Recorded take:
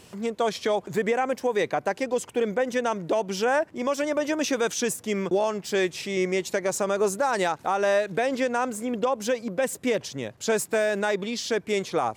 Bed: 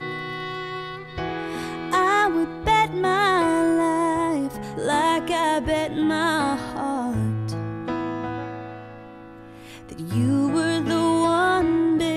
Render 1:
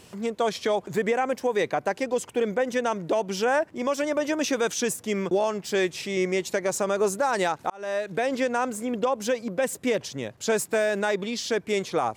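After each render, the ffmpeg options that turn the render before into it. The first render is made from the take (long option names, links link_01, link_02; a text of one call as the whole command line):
ffmpeg -i in.wav -filter_complex "[0:a]asplit=2[link_01][link_02];[link_01]atrim=end=7.7,asetpts=PTS-STARTPTS,afade=type=out:start_time=7.696:duration=0.004:curve=hsin[link_03];[link_02]atrim=start=7.7,asetpts=PTS-STARTPTS,afade=type=in:duration=0.73:curve=qsin[link_04];[link_03][link_04]concat=n=2:v=0:a=1" out.wav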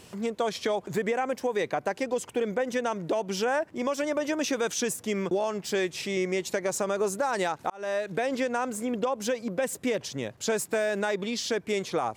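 ffmpeg -i in.wav -af "acompressor=threshold=-26dB:ratio=2" out.wav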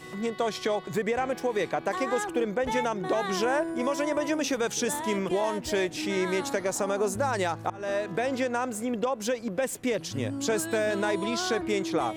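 ffmpeg -i in.wav -i bed.wav -filter_complex "[1:a]volume=-13.5dB[link_01];[0:a][link_01]amix=inputs=2:normalize=0" out.wav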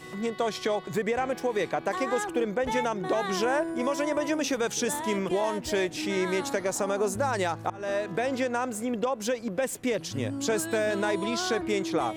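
ffmpeg -i in.wav -af anull out.wav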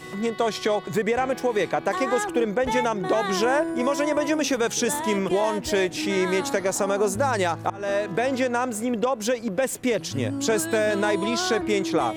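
ffmpeg -i in.wav -af "volume=4.5dB" out.wav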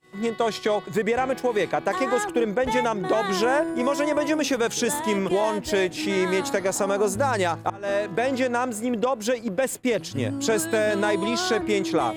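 ffmpeg -i in.wav -af "agate=range=-33dB:threshold=-27dB:ratio=3:detection=peak,bandreject=frequency=5800:width=16" out.wav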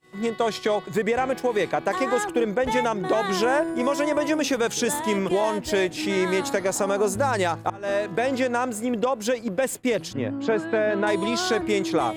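ffmpeg -i in.wav -filter_complex "[0:a]asettb=1/sr,asplit=3[link_01][link_02][link_03];[link_01]atrim=end=10.134[link_04];[link_02]atrim=start=10.13:end=11.07,asetpts=PTS-STARTPTS,afade=type=in:duration=0.004:curve=qsin,afade=type=out:start_time=0.936:duration=0.004:curve=qsin,highpass=130,lowpass=2300[link_05];[link_03]atrim=start=11.066[link_06];[link_04][link_05]acrossfade=duration=0.004:curve1=hsin:curve2=qsin[link_07];[link_07][link_06]acrossfade=duration=0.004:curve1=qsin:curve2=hsin" out.wav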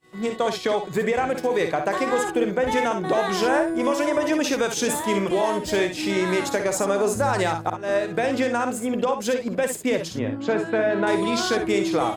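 ffmpeg -i in.wav -af "aecho=1:1:55|67:0.376|0.266" out.wav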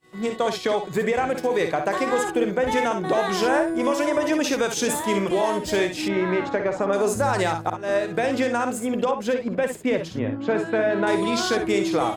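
ffmpeg -i in.wav -filter_complex "[0:a]asettb=1/sr,asplit=3[link_01][link_02][link_03];[link_01]atrim=end=6.084[link_04];[link_02]atrim=start=6.08:end=6.93,asetpts=PTS-STARTPTS,afade=type=in:duration=0.004:curve=qsin,afade=type=out:start_time=0.846:duration=0.004:curve=qsin,lowpass=2300[link_05];[link_03]atrim=start=6.926[link_06];[link_04][link_05]acrossfade=duration=0.004:curve1=hsin:curve2=qsin[link_07];[link_07][link_06]acrossfade=duration=0.004:curve1=qsin:curve2=hsin,asettb=1/sr,asplit=3[link_08][link_09][link_10];[link_08]atrim=end=9.114[link_11];[link_09]atrim=start=9.11:end=10.55,asetpts=PTS-STARTPTS,afade=type=in:duration=0.004:curve=qsin,afade=type=out:start_time=1.436:duration=0.004:curve=qsin,bass=frequency=250:gain=1,treble=frequency=4000:gain=-10[link_12];[link_10]atrim=start=10.546[link_13];[link_11][link_12]acrossfade=duration=0.004:curve1=hsin:curve2=qsin[link_14];[link_14][link_13]acrossfade=duration=0.004:curve1=qsin:curve2=hsin" out.wav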